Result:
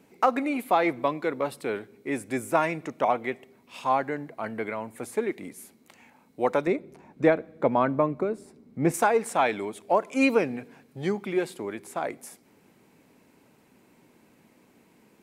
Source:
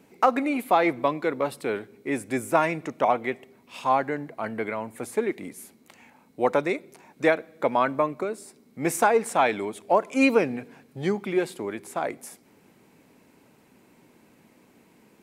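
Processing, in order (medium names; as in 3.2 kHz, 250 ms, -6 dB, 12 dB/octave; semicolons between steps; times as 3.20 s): 6.67–8.94 s: tilt EQ -3 dB/octave; trim -2 dB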